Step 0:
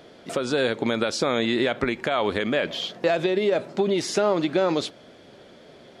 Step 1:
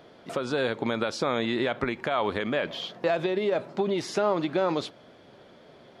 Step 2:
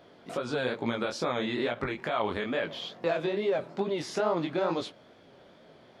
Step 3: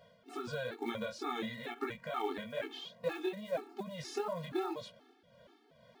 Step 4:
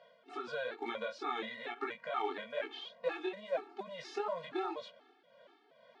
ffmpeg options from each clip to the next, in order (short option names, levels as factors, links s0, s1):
-af "equalizer=f=125:t=o:w=1:g=3,equalizer=f=1000:t=o:w=1:g=5,equalizer=f=8000:t=o:w=1:g=-5,volume=0.562"
-af "flanger=delay=17:depth=7.1:speed=2.3"
-af "tremolo=f=2.2:d=0.47,acrusher=bits=7:mode=log:mix=0:aa=0.000001,afftfilt=real='re*gt(sin(2*PI*2.1*pts/sr)*(1-2*mod(floor(b*sr/1024/230),2)),0)':imag='im*gt(sin(2*PI*2.1*pts/sr)*(1-2*mod(floor(b*sr/1024/230),2)),0)':win_size=1024:overlap=0.75,volume=0.75"
-af "highpass=420,lowpass=3700,volume=1.26"